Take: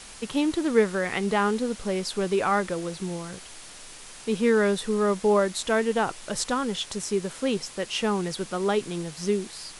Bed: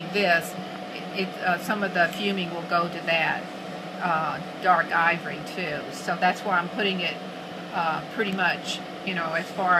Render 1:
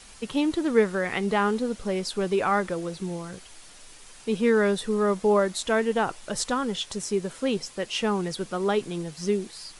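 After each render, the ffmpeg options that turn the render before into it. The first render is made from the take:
ffmpeg -i in.wav -af "afftdn=noise_reduction=6:noise_floor=-44" out.wav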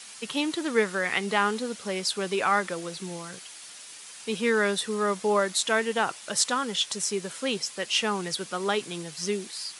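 ffmpeg -i in.wav -af "highpass=frequency=120:width=0.5412,highpass=frequency=120:width=1.3066,tiltshelf=frequency=970:gain=-6" out.wav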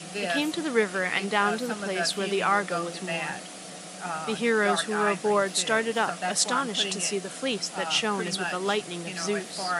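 ffmpeg -i in.wav -i bed.wav -filter_complex "[1:a]volume=-8.5dB[link_01];[0:a][link_01]amix=inputs=2:normalize=0" out.wav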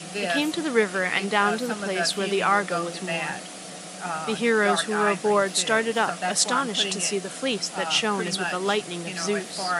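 ffmpeg -i in.wav -af "volume=2.5dB" out.wav

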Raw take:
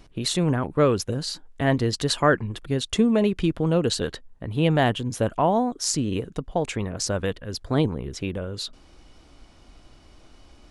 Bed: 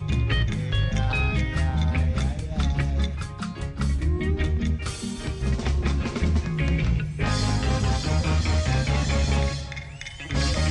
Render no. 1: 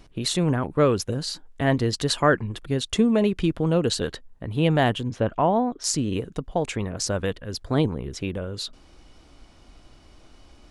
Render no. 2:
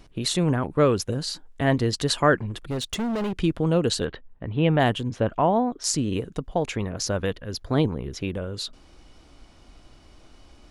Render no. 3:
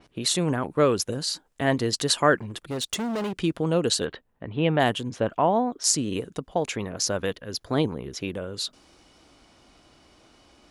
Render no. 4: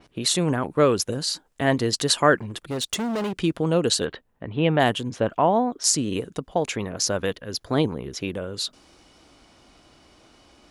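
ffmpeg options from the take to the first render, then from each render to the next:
ffmpeg -i in.wav -filter_complex "[0:a]asplit=3[link_01][link_02][link_03];[link_01]afade=type=out:start_time=5.09:duration=0.02[link_04];[link_02]lowpass=3300,afade=type=in:start_time=5.09:duration=0.02,afade=type=out:start_time=5.83:duration=0.02[link_05];[link_03]afade=type=in:start_time=5.83:duration=0.02[link_06];[link_04][link_05][link_06]amix=inputs=3:normalize=0" out.wav
ffmpeg -i in.wav -filter_complex "[0:a]asettb=1/sr,asplit=3[link_01][link_02][link_03];[link_01]atrim=end=2.374[link_04];[link_02]atrim=start=2.37:end=3.33,asetpts=PTS-STARTPTS,afade=type=in:duration=0.004:curve=qsin,afade=type=out:start_time=0.956:duration=0.004:curve=qsin,asoftclip=type=hard:threshold=-24.5dB[link_05];[link_03]atrim=start=3.326[link_06];[link_04][link_05]acrossfade=duration=0.004:curve1=hsin:curve2=qsin[link_07];[link_07][link_06]acrossfade=duration=0.004:curve1=qsin:curve2=hsin,asplit=3[link_08][link_09][link_10];[link_08]afade=type=out:start_time=4.04:duration=0.02[link_11];[link_09]lowpass=frequency=3200:width=0.5412,lowpass=frequency=3200:width=1.3066,afade=type=in:start_time=4.04:duration=0.02,afade=type=out:start_time=4.79:duration=0.02[link_12];[link_10]afade=type=in:start_time=4.79:duration=0.02[link_13];[link_11][link_12][link_13]amix=inputs=3:normalize=0,asettb=1/sr,asplit=3[link_14][link_15][link_16];[link_14]atrim=end=6.544[link_17];[link_15]atrim=start=6.54:end=8.28,asetpts=PTS-STARTPTS,afade=type=in:duration=0.004:curve=qsin,afade=type=out:start_time=1.736:duration=0.004:curve=qsin,equalizer=frequency=8200:width=7.3:gain=-13.5[link_18];[link_16]atrim=start=8.276[link_19];[link_17][link_18]acrossfade=duration=0.004:curve1=hsin:curve2=qsin[link_20];[link_20][link_19]acrossfade=duration=0.004:curve1=qsin:curve2=hsin" out.wav
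ffmpeg -i in.wav -af "highpass=frequency=200:poles=1,adynamicequalizer=threshold=0.00891:dfrequency=4600:dqfactor=0.7:tfrequency=4600:tqfactor=0.7:attack=5:release=100:ratio=0.375:range=2.5:mode=boostabove:tftype=highshelf" out.wav
ffmpeg -i in.wav -af "volume=2dB,alimiter=limit=-2dB:level=0:latency=1" out.wav

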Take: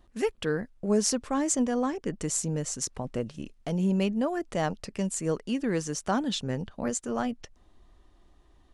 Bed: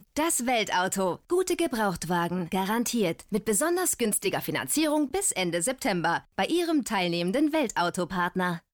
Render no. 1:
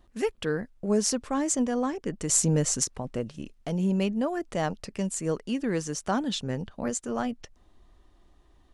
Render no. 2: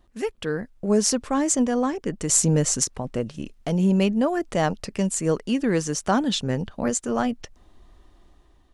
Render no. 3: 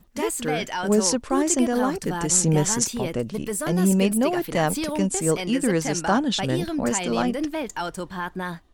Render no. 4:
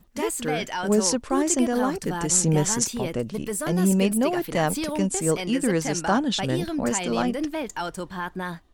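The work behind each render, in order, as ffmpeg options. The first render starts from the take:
ffmpeg -i in.wav -filter_complex "[0:a]asettb=1/sr,asplit=3[link_01][link_02][link_03];[link_01]atrim=end=2.294[link_04];[link_02]atrim=start=2.29:end=2.84,asetpts=PTS-STARTPTS,afade=type=in:duration=0.004:curve=qsin,afade=type=out:start_time=0.546:duration=0.004:curve=qsin,acontrast=72[link_05];[link_03]atrim=start=2.836[link_06];[link_04][link_05]acrossfade=duration=0.004:curve1=hsin:curve2=qsin[link_07];[link_07][link_06]acrossfade=duration=0.004:curve1=qsin:curve2=hsin" out.wav
ffmpeg -i in.wav -af "dynaudnorm=framelen=260:gausssize=5:maxgain=6dB" out.wav
ffmpeg -i in.wav -i bed.wav -filter_complex "[1:a]volume=-3dB[link_01];[0:a][link_01]amix=inputs=2:normalize=0" out.wav
ffmpeg -i in.wav -af "volume=-1dB" out.wav

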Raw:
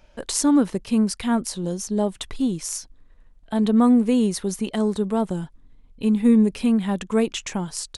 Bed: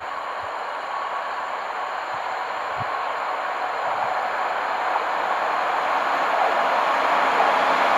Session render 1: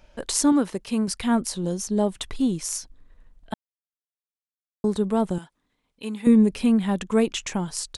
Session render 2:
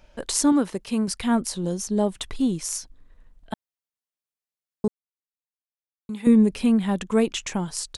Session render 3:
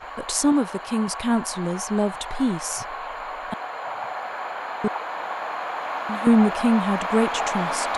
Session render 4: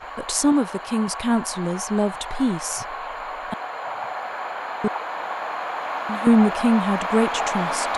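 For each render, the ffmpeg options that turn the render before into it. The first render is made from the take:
ffmpeg -i in.wav -filter_complex "[0:a]asettb=1/sr,asplit=3[link_01][link_02][link_03];[link_01]atrim=end=0.524[link_04];[link_02]atrim=start=0.52:end=1.08,asetpts=PTS-STARTPTS,afade=type=in:duration=0.004:curve=qsin,afade=type=out:start_time=0.556:duration=0.004:curve=qsin,lowshelf=frequency=230:gain=-9.5[link_05];[link_03]atrim=start=1.076[link_06];[link_04][link_05]acrossfade=duration=0.004:curve1=hsin:curve2=qsin[link_07];[link_07][link_06]acrossfade=duration=0.004:curve1=qsin:curve2=hsin,asettb=1/sr,asplit=3[link_08][link_09][link_10];[link_08]atrim=end=5.384[link_11];[link_09]atrim=start=5.38:end=6.27,asetpts=PTS-STARTPTS,afade=type=in:duration=0.004:curve=qsin,afade=type=out:start_time=0.886:duration=0.004:curve=qsin,highpass=frequency=870:poles=1[link_12];[link_10]atrim=start=6.266[link_13];[link_11][link_12]acrossfade=duration=0.004:curve1=hsin:curve2=qsin[link_14];[link_14][link_13]acrossfade=duration=0.004:curve1=qsin:curve2=hsin,asplit=3[link_15][link_16][link_17];[link_15]atrim=end=3.54,asetpts=PTS-STARTPTS,afade=type=out:start_time=3.536:duration=0.004:curve=hsin[link_18];[link_16]atrim=start=3.54:end=4.84,asetpts=PTS-STARTPTS,volume=0[link_19];[link_17]atrim=start=4.84,asetpts=PTS-STARTPTS,afade=type=in:duration=0.004:curve=hsin[link_20];[link_18][link_19][link_20]concat=n=3:v=0:a=1" out.wav
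ffmpeg -i in.wav -filter_complex "[0:a]asplit=3[link_01][link_02][link_03];[link_01]atrim=end=4.88,asetpts=PTS-STARTPTS,afade=type=out:start_time=4.876:duration=0.004:curve=hsin[link_04];[link_02]atrim=start=4.88:end=6.09,asetpts=PTS-STARTPTS,volume=0[link_05];[link_03]atrim=start=6.09,asetpts=PTS-STARTPTS,afade=type=in:duration=0.004:curve=hsin[link_06];[link_04][link_05][link_06]concat=n=3:v=0:a=1" out.wav
ffmpeg -i in.wav -i bed.wav -filter_complex "[1:a]volume=-7dB[link_01];[0:a][link_01]amix=inputs=2:normalize=0" out.wav
ffmpeg -i in.wav -af "volume=1dB" out.wav

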